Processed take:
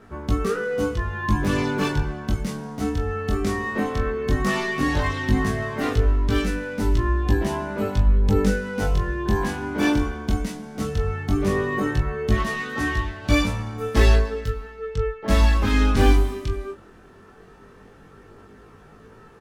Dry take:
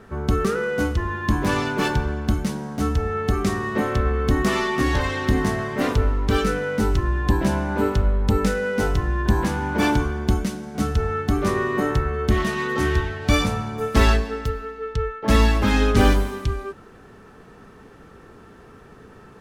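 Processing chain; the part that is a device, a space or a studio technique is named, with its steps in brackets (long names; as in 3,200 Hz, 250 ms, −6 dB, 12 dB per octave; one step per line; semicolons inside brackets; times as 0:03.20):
double-tracked vocal (double-tracking delay 20 ms −7 dB; chorus effect 0.15 Hz, delay 17 ms, depth 6.4 ms)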